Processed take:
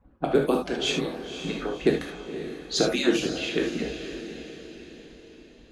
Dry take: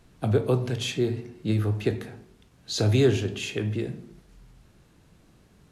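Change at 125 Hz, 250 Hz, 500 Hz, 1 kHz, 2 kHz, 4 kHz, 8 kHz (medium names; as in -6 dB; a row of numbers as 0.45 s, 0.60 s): -13.0 dB, +1.5 dB, +1.0 dB, +6.0 dB, +5.0 dB, +4.5 dB, +2.5 dB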